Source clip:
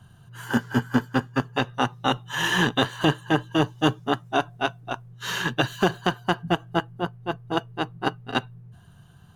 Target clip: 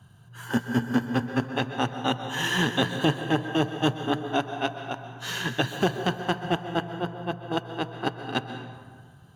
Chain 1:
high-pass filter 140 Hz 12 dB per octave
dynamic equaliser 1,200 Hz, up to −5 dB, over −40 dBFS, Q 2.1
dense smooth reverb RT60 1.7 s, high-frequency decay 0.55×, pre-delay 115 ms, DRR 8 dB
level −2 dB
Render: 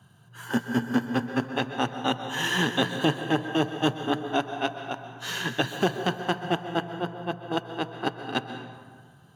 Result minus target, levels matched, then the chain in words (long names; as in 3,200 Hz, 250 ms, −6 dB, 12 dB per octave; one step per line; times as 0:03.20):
125 Hz band −2.5 dB
high-pass filter 57 Hz 12 dB per octave
dynamic equaliser 1,200 Hz, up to −5 dB, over −40 dBFS, Q 2.1
dense smooth reverb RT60 1.7 s, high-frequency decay 0.55×, pre-delay 115 ms, DRR 8 dB
level −2 dB